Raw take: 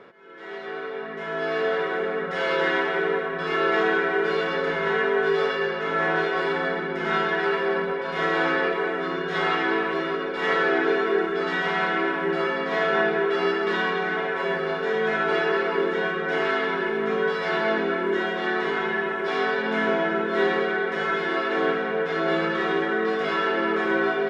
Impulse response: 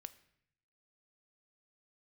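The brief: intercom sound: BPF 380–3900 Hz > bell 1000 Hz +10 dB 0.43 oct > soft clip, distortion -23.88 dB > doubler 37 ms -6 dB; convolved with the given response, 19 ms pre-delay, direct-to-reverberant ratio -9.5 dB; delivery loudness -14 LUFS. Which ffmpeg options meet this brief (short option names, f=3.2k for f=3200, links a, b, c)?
-filter_complex "[0:a]asplit=2[a][b];[1:a]atrim=start_sample=2205,adelay=19[c];[b][c]afir=irnorm=-1:irlink=0,volume=15dB[d];[a][d]amix=inputs=2:normalize=0,highpass=380,lowpass=3.9k,equalizer=f=1k:t=o:w=0.43:g=10,asoftclip=threshold=-4dB,asplit=2[e][f];[f]adelay=37,volume=-6dB[g];[e][g]amix=inputs=2:normalize=0,volume=0.5dB"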